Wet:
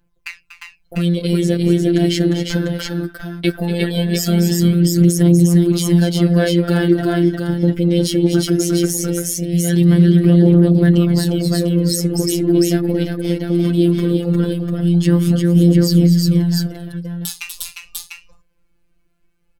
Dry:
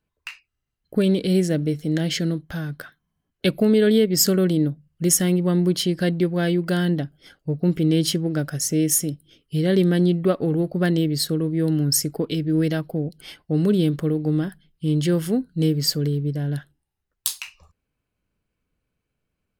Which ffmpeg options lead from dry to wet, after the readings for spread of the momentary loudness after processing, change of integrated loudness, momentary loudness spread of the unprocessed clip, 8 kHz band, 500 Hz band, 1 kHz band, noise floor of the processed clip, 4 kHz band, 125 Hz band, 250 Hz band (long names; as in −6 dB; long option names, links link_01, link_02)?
14 LU, +6.5 dB, 12 LU, +1.0 dB, +4.5 dB, +5.0 dB, −60 dBFS, +3.0 dB, +8.5 dB, +7.5 dB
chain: -filter_complex "[0:a]lowshelf=frequency=100:gain=10,asplit=2[link_01][link_02];[link_02]acompressor=threshold=-29dB:ratio=6,volume=-2dB[link_03];[link_01][link_03]amix=inputs=2:normalize=0,aecho=1:1:241|251|353|697:0.251|0.106|0.631|0.562,aphaser=in_gain=1:out_gain=1:delay=4:decay=0.47:speed=0.19:type=triangular,afftfilt=real='hypot(re,im)*cos(PI*b)':imag='0':win_size=1024:overlap=0.75,alimiter=level_in=4dB:limit=-1dB:release=50:level=0:latency=1,volume=-1dB"